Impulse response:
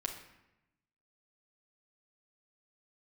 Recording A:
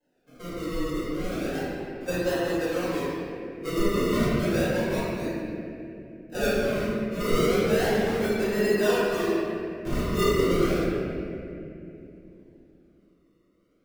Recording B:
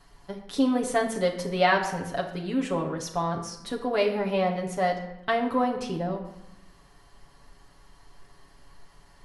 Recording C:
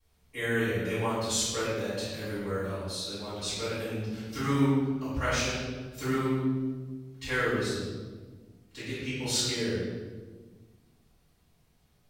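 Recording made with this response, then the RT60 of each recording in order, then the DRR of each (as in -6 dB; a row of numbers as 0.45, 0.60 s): B; 2.8, 0.90, 1.4 s; -12.5, -1.5, -15.0 dB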